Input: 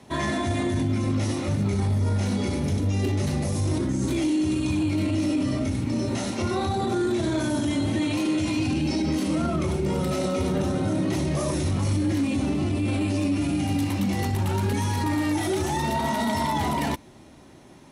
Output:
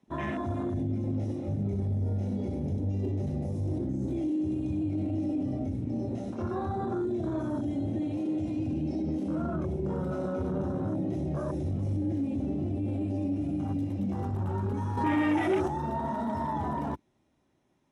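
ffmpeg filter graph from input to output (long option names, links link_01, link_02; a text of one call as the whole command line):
ffmpeg -i in.wav -filter_complex "[0:a]asettb=1/sr,asplit=3[link_01][link_02][link_03];[link_01]atrim=end=14.974[link_04];[link_02]atrim=start=14.97:end=15.68,asetpts=PTS-STARTPTS,afade=type=in:duration=0.004:curve=qsin,afade=type=out:start_time=0.706:duration=0.004:curve=qsin,highpass=frequency=240:poles=1,acontrast=88[link_05];[link_03]atrim=start=15.676[link_06];[link_04][link_05]acrossfade=duration=0.004:curve1=hsin:curve2=qsin[link_07];[link_07][link_06]acrossfade=duration=0.004:curve1=qsin:curve2=hsin,afwtdn=0.0355,highshelf=frequency=11000:gain=-10.5,bandreject=frequency=4400:width=10,volume=-6dB" out.wav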